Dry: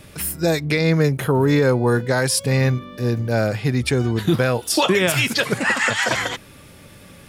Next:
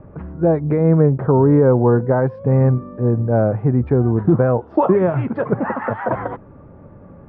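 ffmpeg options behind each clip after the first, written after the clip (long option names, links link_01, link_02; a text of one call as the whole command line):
ffmpeg -i in.wav -af "lowpass=frequency=1100:width=0.5412,lowpass=frequency=1100:width=1.3066,volume=4dB" out.wav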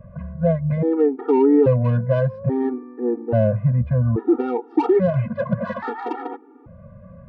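ffmpeg -i in.wav -filter_complex "[0:a]acrossover=split=600[link_01][link_02];[link_02]asoftclip=type=tanh:threshold=-21dB[link_03];[link_01][link_03]amix=inputs=2:normalize=0,afftfilt=real='re*gt(sin(2*PI*0.6*pts/sr)*(1-2*mod(floor(b*sr/1024/240),2)),0)':imag='im*gt(sin(2*PI*0.6*pts/sr)*(1-2*mod(floor(b*sr/1024/240),2)),0)':win_size=1024:overlap=0.75" out.wav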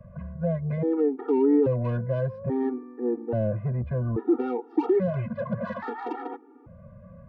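ffmpeg -i in.wav -filter_complex "[0:a]acrossover=split=230|460[link_01][link_02][link_03];[link_01]asoftclip=type=tanh:threshold=-22dB[link_04];[link_03]alimiter=limit=-23.5dB:level=0:latency=1:release=22[link_05];[link_04][link_02][link_05]amix=inputs=3:normalize=0,volume=-4.5dB" out.wav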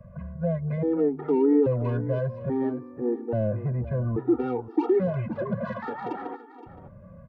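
ffmpeg -i in.wav -af "aecho=1:1:519:0.178" out.wav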